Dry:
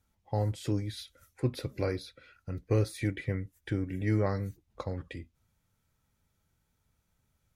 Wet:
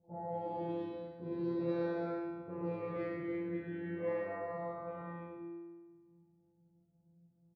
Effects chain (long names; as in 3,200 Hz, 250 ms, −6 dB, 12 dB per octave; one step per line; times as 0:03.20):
every bin's largest magnitude spread in time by 480 ms
Bessel low-pass filter 1,400 Hz, order 2
low-pass that shuts in the quiet parts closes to 310 Hz, open at −23 dBFS
high-pass filter 130 Hz 12 dB per octave
upward compression, threshold −40 dBFS
tuned comb filter 170 Hz, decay 1.6 s, mix 100%
low-pass that shuts in the quiet parts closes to 950 Hz, open at −36 dBFS
on a send: single-tap delay 109 ms −6 dB
on the sum: level +8.5 dB